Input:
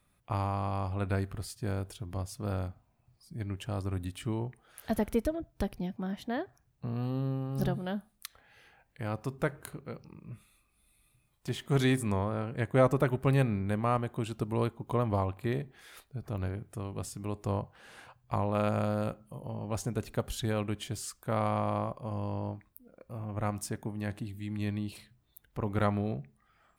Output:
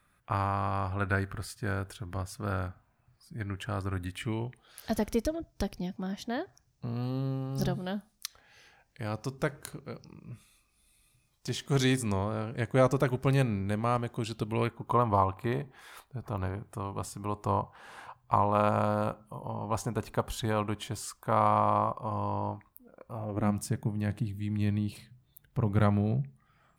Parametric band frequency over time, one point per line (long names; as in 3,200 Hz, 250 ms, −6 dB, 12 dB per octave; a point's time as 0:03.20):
parametric band +11 dB 0.87 octaves
0:04.02 1,500 Hz
0:04.89 5,600 Hz
0:14.22 5,600 Hz
0:14.97 980 Hz
0:23.13 980 Hz
0:23.57 140 Hz